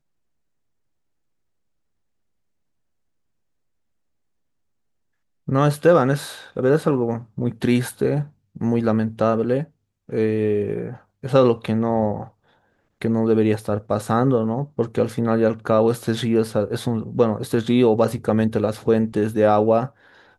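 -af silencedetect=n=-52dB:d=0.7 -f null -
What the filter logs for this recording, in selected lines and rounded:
silence_start: 0.00
silence_end: 5.47 | silence_duration: 5.47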